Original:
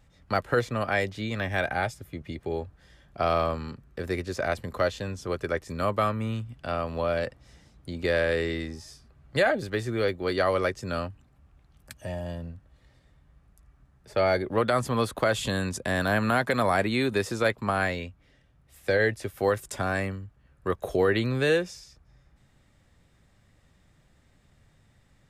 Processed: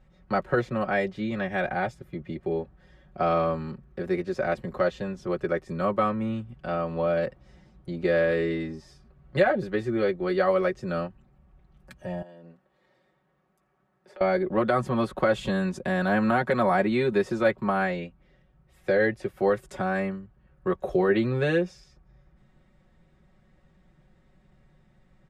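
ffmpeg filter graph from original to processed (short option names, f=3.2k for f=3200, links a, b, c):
-filter_complex "[0:a]asettb=1/sr,asplit=3[a][b][c];[a]atrim=end=12.224[d];[b]atrim=start=12.22:end=14.21,asetpts=PTS-STARTPTS,afade=t=in:d=0.004:c=qsin,afade=t=out:st=1.986:d=0.004:c=qsin,highpass=310,acompressor=threshold=-46dB:ratio=6:attack=3.2:release=140:knee=1:detection=peak[e];[c]atrim=start=14.206[f];[d][e]acrossfade=d=0.004:c1=hsin:c2=qsin[g];[g][f]acrossfade=d=0.004:c1=qsin:c2=hsin,lowpass=f=1.4k:p=1,equalizer=f=290:t=o:w=0.42:g=2.5,aecho=1:1:5.4:0.87"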